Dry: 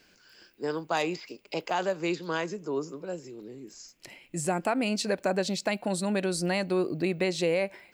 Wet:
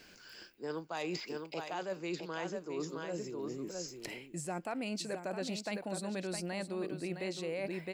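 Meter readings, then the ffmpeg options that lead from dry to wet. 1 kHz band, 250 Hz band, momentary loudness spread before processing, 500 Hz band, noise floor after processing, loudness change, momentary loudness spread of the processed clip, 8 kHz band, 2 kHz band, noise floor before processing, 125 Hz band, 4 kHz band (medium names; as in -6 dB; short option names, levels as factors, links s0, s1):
-10.0 dB, -8.5 dB, 16 LU, -9.0 dB, -58 dBFS, -9.5 dB, 4 LU, -7.5 dB, -9.5 dB, -62 dBFS, -8.5 dB, -8.0 dB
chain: -af "aecho=1:1:663:0.355,areverse,acompressor=threshold=0.01:ratio=6,areverse,volume=1.5"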